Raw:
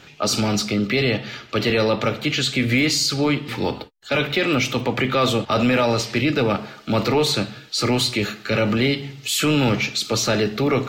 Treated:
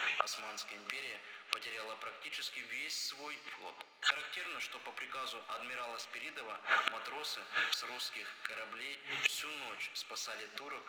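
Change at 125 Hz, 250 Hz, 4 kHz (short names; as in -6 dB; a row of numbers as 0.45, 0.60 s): under -40 dB, -38.5 dB, -17.0 dB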